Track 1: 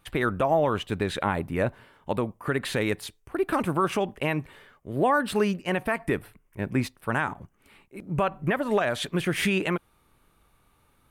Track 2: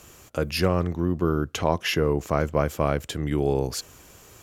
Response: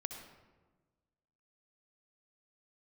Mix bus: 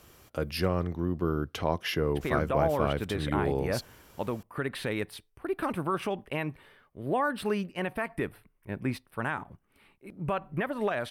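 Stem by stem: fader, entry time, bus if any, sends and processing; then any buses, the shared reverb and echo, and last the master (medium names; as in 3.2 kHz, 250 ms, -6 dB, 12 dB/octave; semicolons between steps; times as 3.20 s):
-5.5 dB, 2.10 s, no send, none
-5.5 dB, 0.00 s, no send, band-stop 2.6 kHz, Q 21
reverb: none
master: peaking EQ 6.9 kHz -10.5 dB 0.32 oct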